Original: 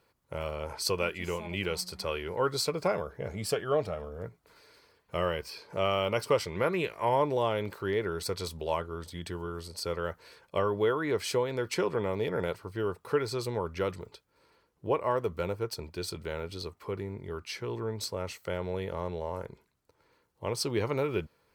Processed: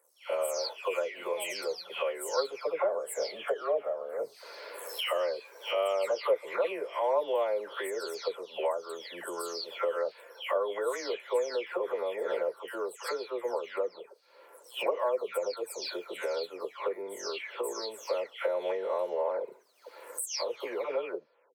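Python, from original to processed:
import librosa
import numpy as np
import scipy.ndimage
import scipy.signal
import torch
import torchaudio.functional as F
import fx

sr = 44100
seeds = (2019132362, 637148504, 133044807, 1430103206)

y = fx.spec_delay(x, sr, highs='early', ms=374)
y = fx.recorder_agc(y, sr, target_db=-20.5, rise_db_per_s=23.0, max_gain_db=30)
y = fx.ladder_highpass(y, sr, hz=450.0, resonance_pct=50)
y = y * librosa.db_to_amplitude(4.0)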